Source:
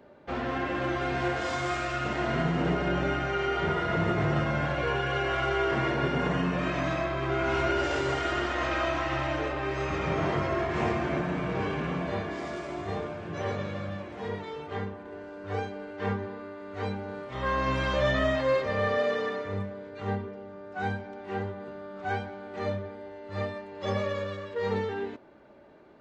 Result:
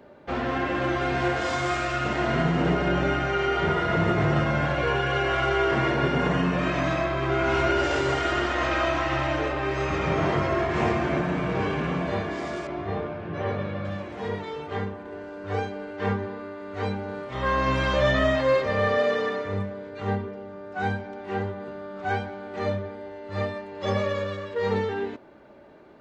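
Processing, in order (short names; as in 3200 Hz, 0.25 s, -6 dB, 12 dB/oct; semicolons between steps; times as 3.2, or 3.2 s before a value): 12.67–13.85 air absorption 220 m; gain +4 dB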